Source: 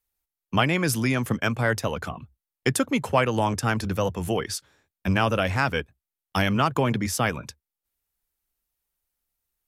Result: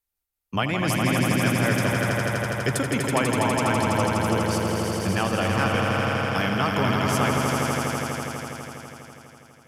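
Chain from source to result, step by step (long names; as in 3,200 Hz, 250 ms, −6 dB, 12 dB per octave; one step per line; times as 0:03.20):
pitch vibrato 9.7 Hz 33 cents
on a send: echo that builds up and dies away 82 ms, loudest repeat 5, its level −5 dB
on the sum: level −3.5 dB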